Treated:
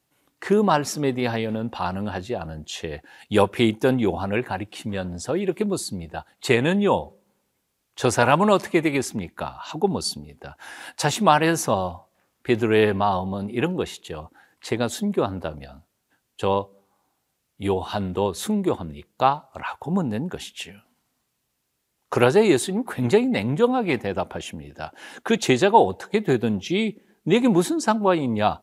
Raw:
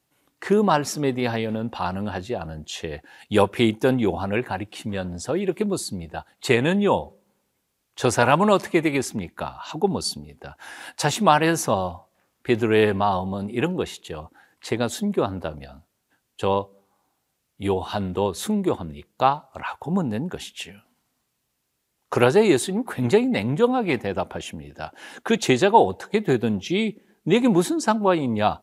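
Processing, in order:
0:12.78–0:13.69: parametric band 8,000 Hz −10.5 dB 0.21 octaves

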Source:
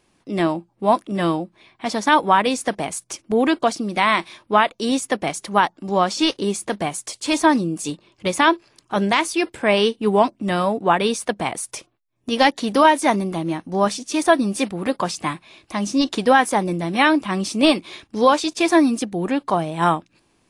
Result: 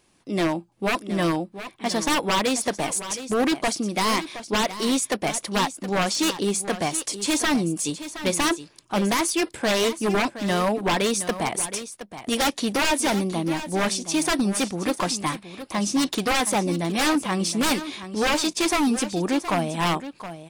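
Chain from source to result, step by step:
high-shelf EQ 4,400 Hz +6 dB
wave folding −14.5 dBFS
on a send: single-tap delay 719 ms −12.5 dB
on the sum: level −1.5 dB

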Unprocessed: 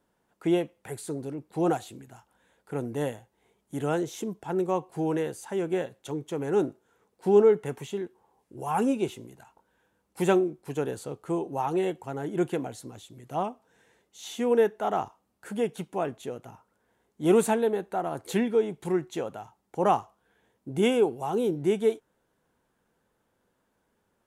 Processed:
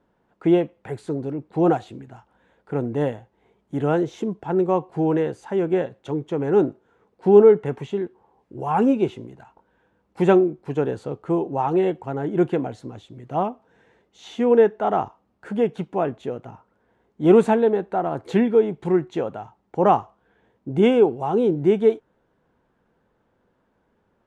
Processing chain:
head-to-tape spacing loss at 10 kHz 24 dB
level +8 dB

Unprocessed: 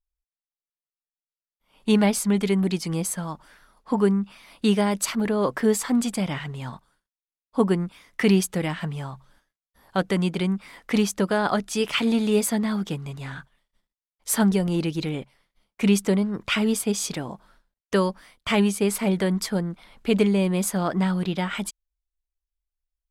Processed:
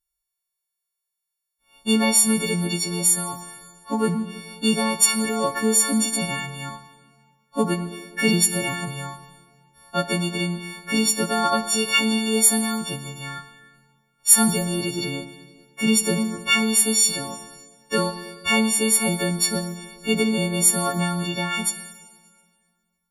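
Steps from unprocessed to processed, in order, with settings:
every partial snapped to a pitch grid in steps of 4 semitones
dense smooth reverb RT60 1.8 s, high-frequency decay 0.85×, DRR 9.5 dB
0:18.10–0:18.70: steady tone 4,600 Hz −48 dBFS
level −2 dB

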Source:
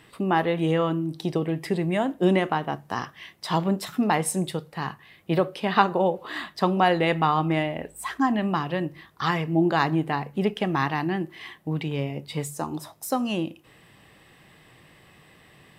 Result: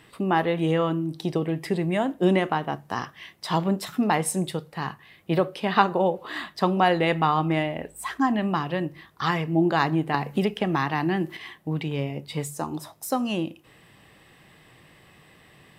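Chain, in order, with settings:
0:10.14–0:11.37: multiband upward and downward compressor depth 100%

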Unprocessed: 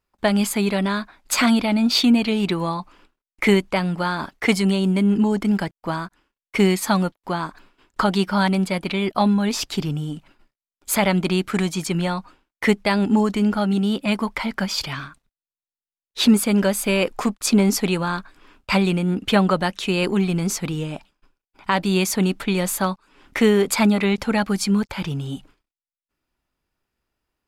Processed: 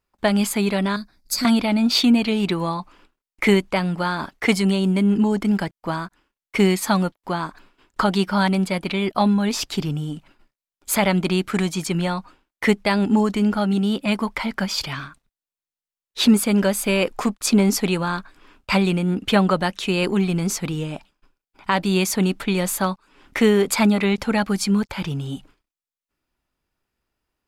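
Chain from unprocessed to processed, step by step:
0:00.96–0:01.45: drawn EQ curve 170 Hz 0 dB, 1,000 Hz −18 dB, 1,900 Hz −13 dB, 3,100 Hz −19 dB, 4,700 Hz +4 dB, 7,300 Hz −5 dB, 12,000 Hz +1 dB

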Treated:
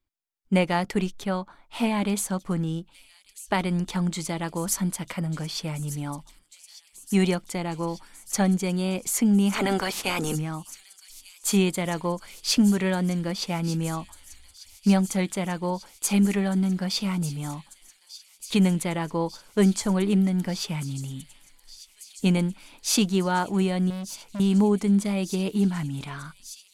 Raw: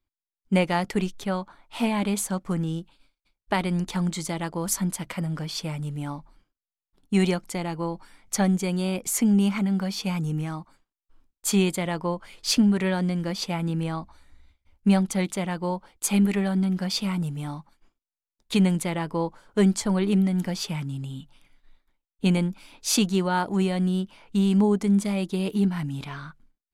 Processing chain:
0:09.52–0:10.34: ceiling on every frequency bin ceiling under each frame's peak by 24 dB
delay with a high-pass on its return 1,194 ms, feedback 82%, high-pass 4,900 Hz, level −12 dB
0:23.90–0:24.40: hard clipping −31 dBFS, distortion −22 dB

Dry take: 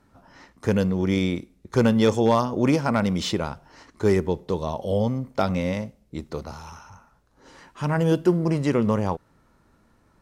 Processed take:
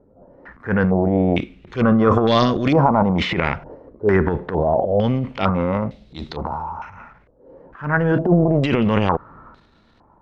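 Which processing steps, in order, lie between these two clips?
transient designer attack −11 dB, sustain +10 dB
0:01.75–0:02.81: Butterworth band-reject 880 Hz, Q 5.7
low-pass on a step sequencer 2.2 Hz 520–3,800 Hz
level +3.5 dB

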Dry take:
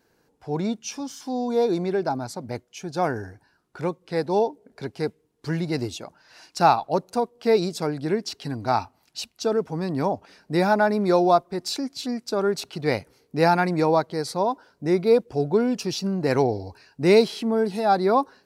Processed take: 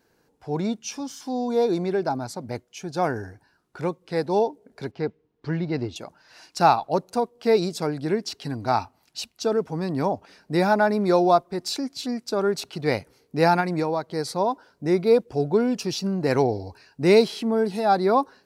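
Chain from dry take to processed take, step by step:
0:04.91–0:05.96: high-frequency loss of the air 210 metres
0:13.60–0:14.16: downward compressor, threshold −21 dBFS, peak gain reduction 6.5 dB

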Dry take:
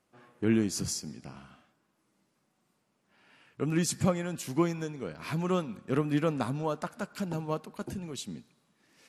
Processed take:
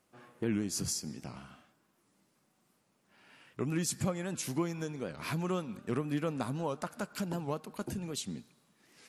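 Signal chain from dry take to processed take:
high-shelf EQ 8,100 Hz +6 dB
downward compressor 2 to 1, threshold −35 dBFS, peak gain reduction 8 dB
wow of a warped record 78 rpm, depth 160 cents
level +1 dB

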